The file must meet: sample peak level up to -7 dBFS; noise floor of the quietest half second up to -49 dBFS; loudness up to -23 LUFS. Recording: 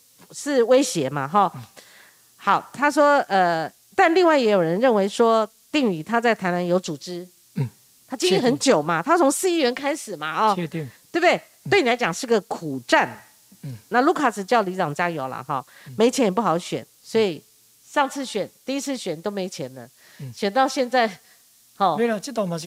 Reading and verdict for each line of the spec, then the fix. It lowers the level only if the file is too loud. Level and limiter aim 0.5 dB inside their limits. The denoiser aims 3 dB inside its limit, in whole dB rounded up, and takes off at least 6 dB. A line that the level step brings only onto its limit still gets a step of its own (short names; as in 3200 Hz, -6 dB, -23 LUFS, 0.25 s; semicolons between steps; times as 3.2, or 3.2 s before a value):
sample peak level -4.5 dBFS: fail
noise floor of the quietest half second -55 dBFS: OK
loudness -21.5 LUFS: fail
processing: gain -2 dB; limiter -7.5 dBFS